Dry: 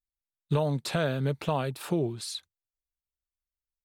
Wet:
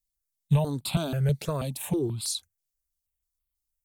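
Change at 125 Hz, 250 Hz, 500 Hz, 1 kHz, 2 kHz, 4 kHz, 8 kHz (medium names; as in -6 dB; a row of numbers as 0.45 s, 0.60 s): +4.0 dB, +2.0 dB, -2.0 dB, -4.0 dB, -5.5 dB, +2.0 dB, +7.5 dB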